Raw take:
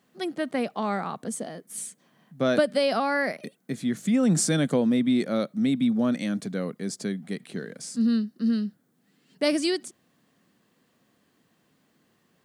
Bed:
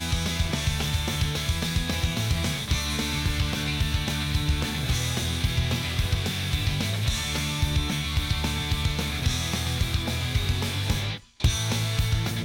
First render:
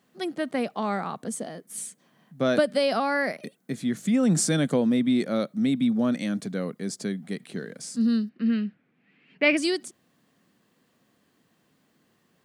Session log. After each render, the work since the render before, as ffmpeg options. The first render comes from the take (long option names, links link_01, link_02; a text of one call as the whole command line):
ffmpeg -i in.wav -filter_complex "[0:a]asettb=1/sr,asplit=3[link_01][link_02][link_03];[link_01]atrim=end=8.294[link_04];[link_02]atrim=start=8.29:end=9.57,asetpts=PTS-STARTPTS,afade=type=in:duration=0.004:curve=qsin,afade=type=out:start_time=1.276:duration=0.004:curve=qsin,lowpass=frequency=2400:width_type=q:width=5.7[link_05];[link_03]atrim=start=9.566[link_06];[link_04][link_05]acrossfade=duration=0.004:curve1=hsin:curve2=qsin[link_07];[link_07][link_06]acrossfade=duration=0.004:curve1=qsin:curve2=hsin" out.wav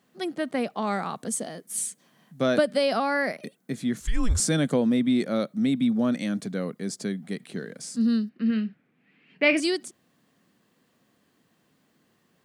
ffmpeg -i in.wav -filter_complex "[0:a]asettb=1/sr,asplit=3[link_01][link_02][link_03];[link_01]atrim=end=0.874[link_04];[link_02]atrim=start=0.87:end=2.46,asetpts=PTS-STARTPTS,afade=type=in:duration=0.004:curve=qsin,afade=type=out:start_time=1.586:duration=0.004:curve=qsin,equalizer=frequency=9600:width_type=o:width=2.8:gain=6[link_05];[link_03]atrim=start=2.456[link_06];[link_04][link_05]acrossfade=duration=0.004:curve1=hsin:curve2=qsin[link_07];[link_07][link_06]acrossfade=duration=0.004:curve1=qsin:curve2=hsin,asettb=1/sr,asplit=3[link_08][link_09][link_10];[link_08]atrim=end=4.004[link_11];[link_09]atrim=start=4:end=4.4,asetpts=PTS-STARTPTS,afade=type=in:duration=0.004:curve=qsin,afade=type=out:start_time=0.396:duration=0.004:curve=qsin,afreqshift=-240[link_12];[link_10]atrim=start=4.396[link_13];[link_11][link_12]acrossfade=duration=0.004:curve1=hsin:curve2=qsin[link_14];[link_14][link_13]acrossfade=duration=0.004:curve1=qsin:curve2=hsin,asettb=1/sr,asplit=3[link_15][link_16][link_17];[link_15]atrim=end=8.474[link_18];[link_16]atrim=start=8.47:end=9.6,asetpts=PTS-STARTPTS,afade=type=in:duration=0.004:curve=qsin,afade=type=out:start_time=1.126:duration=0.004:curve=qsin,asplit=2[link_19][link_20];[link_20]adelay=32,volume=-12.5dB[link_21];[link_19][link_21]amix=inputs=2:normalize=0,atrim=end_sample=49833[link_22];[link_17]atrim=start=9.596[link_23];[link_18][link_22]acrossfade=duration=0.004:curve1=hsin:curve2=qsin[link_24];[link_24][link_23]acrossfade=duration=0.004:curve1=qsin:curve2=hsin" out.wav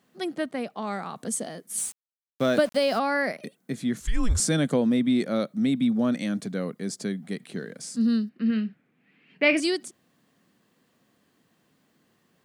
ffmpeg -i in.wav -filter_complex "[0:a]asettb=1/sr,asplit=3[link_01][link_02][link_03];[link_01]atrim=end=1.784[link_04];[link_02]atrim=start=1.78:end=2.99,asetpts=PTS-STARTPTS,afade=type=in:duration=0.004:curve=qsin,afade=type=out:start_time=1.206:duration=0.004:curve=qsin,aeval=exprs='val(0)*gte(abs(val(0)),0.0126)':channel_layout=same[link_05];[link_03]atrim=start=2.986[link_06];[link_04][link_05]acrossfade=duration=0.004:curve1=hsin:curve2=qsin[link_07];[link_07][link_06]acrossfade=duration=0.004:curve1=qsin:curve2=hsin,asplit=3[link_08][link_09][link_10];[link_08]atrim=end=0.462[link_11];[link_09]atrim=start=0.458:end=1.162,asetpts=PTS-STARTPTS,volume=-4dB[link_12];[link_10]atrim=start=1.158[link_13];[link_11][link_12]acrossfade=duration=0.004:curve1=hsin:curve2=hsin[link_14];[link_14][link_13]acrossfade=duration=0.004:curve1=hsin:curve2=hsin" out.wav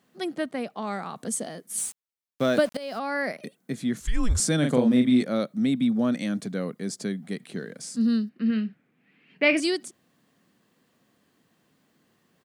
ffmpeg -i in.wav -filter_complex "[0:a]asplit=3[link_01][link_02][link_03];[link_01]afade=type=out:start_time=4.62:duration=0.02[link_04];[link_02]asplit=2[link_05][link_06];[link_06]adelay=40,volume=-4dB[link_07];[link_05][link_07]amix=inputs=2:normalize=0,afade=type=in:start_time=4.62:duration=0.02,afade=type=out:start_time=5.22:duration=0.02[link_08];[link_03]afade=type=in:start_time=5.22:duration=0.02[link_09];[link_04][link_08][link_09]amix=inputs=3:normalize=0,asplit=2[link_10][link_11];[link_10]atrim=end=2.77,asetpts=PTS-STARTPTS,afade=type=out:start_time=2.766:duration=0.004:curve=hsin:silence=0.125893[link_12];[link_11]atrim=start=2.77,asetpts=PTS-STARTPTS,afade=type=in:duration=0.83:curve=qsin:silence=0.125893[link_13];[link_12][link_13]concat=n=2:v=0:a=1" out.wav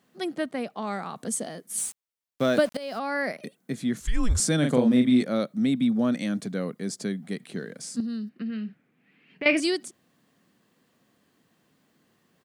ffmpeg -i in.wav -filter_complex "[0:a]asettb=1/sr,asplit=3[link_01][link_02][link_03];[link_01]atrim=end=8.004[link_04];[link_02]atrim=start=8:end=9.46,asetpts=PTS-STARTPTS,afade=type=in:duration=0.004:curve=qsin,afade=type=out:start_time=1.456:duration=0.004:curve=qsin,acompressor=threshold=-29dB:ratio=6:attack=3.2:release=140:knee=1:detection=peak[link_05];[link_03]atrim=start=9.456[link_06];[link_04][link_05]acrossfade=duration=0.004:curve1=hsin:curve2=qsin[link_07];[link_07][link_06]acrossfade=duration=0.004:curve1=qsin:curve2=hsin" out.wav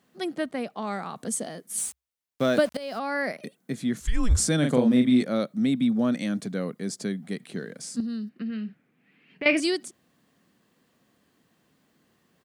ffmpeg -i in.wav -af "equalizer=frequency=65:width_type=o:width=0.29:gain=9" out.wav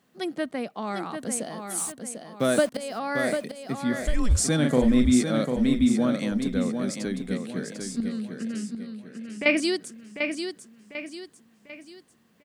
ffmpeg -i in.wav -af "aecho=1:1:746|1492|2238|2984|3730:0.473|0.194|0.0795|0.0326|0.0134" out.wav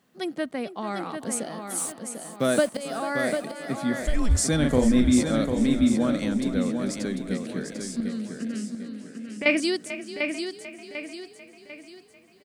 ffmpeg -i in.wav -filter_complex "[0:a]asplit=5[link_01][link_02][link_03][link_04][link_05];[link_02]adelay=442,afreqshift=31,volume=-13.5dB[link_06];[link_03]adelay=884,afreqshift=62,volume=-21dB[link_07];[link_04]adelay=1326,afreqshift=93,volume=-28.6dB[link_08];[link_05]adelay=1768,afreqshift=124,volume=-36.1dB[link_09];[link_01][link_06][link_07][link_08][link_09]amix=inputs=5:normalize=0" out.wav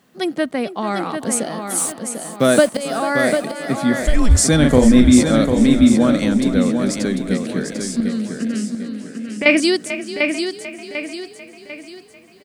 ffmpeg -i in.wav -af "volume=9dB,alimiter=limit=-1dB:level=0:latency=1" out.wav